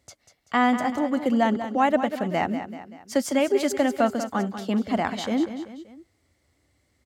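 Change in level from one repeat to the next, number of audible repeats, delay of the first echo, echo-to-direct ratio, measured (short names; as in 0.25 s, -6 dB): -6.5 dB, 3, 0.192 s, -9.5 dB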